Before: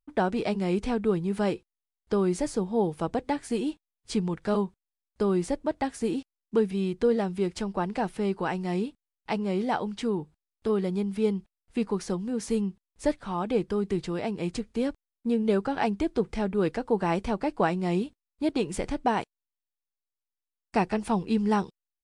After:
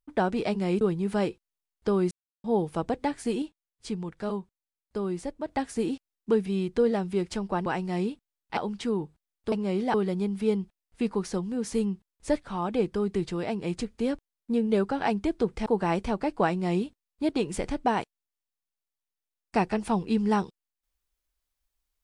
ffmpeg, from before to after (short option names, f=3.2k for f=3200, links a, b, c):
-filter_complex "[0:a]asplit=11[a][b][c][d][e][f][g][h][i][j][k];[a]atrim=end=0.812[l];[b]atrim=start=1.058:end=2.36,asetpts=PTS-STARTPTS,afade=t=out:st=1.298:d=0.004:c=hsin[m];[c]atrim=start=2.36:end=2.69,asetpts=PTS-STARTPTS,volume=0[n];[d]atrim=start=2.69:end=3.672,asetpts=PTS-STARTPTS,afade=t=in:d=0.004:c=hsin[o];[e]atrim=start=3.668:end=5.732,asetpts=PTS-STARTPTS,volume=-5.5dB[p];[f]atrim=start=5.728:end=7.912[q];[g]atrim=start=8.418:end=9.332[r];[h]atrim=start=9.748:end=10.702[s];[i]atrim=start=9.328:end=9.752[t];[j]atrim=start=10.698:end=16.422[u];[k]atrim=start=16.858[v];[m][n][o]concat=n=3:v=0:a=1[w];[l][w]acrossfade=d=0.004:c1=hsin:c2=hsin[x];[x][p]acrossfade=d=0.004:c1=hsin:c2=hsin[y];[y][q]acrossfade=d=0.004:c1=hsin:c2=hsin[z];[z][r]acrossfade=d=0.004:c1=hsin:c2=hsin[aa];[aa][s]acrossfade=d=0.004:c1=hsin:c2=hsin[ab];[ab][t]acrossfade=d=0.004:c1=hsin:c2=hsin[ac];[ac][u]acrossfade=d=0.004:c1=hsin:c2=hsin[ad];[ad][v]acrossfade=d=0.004:c1=hsin:c2=hsin"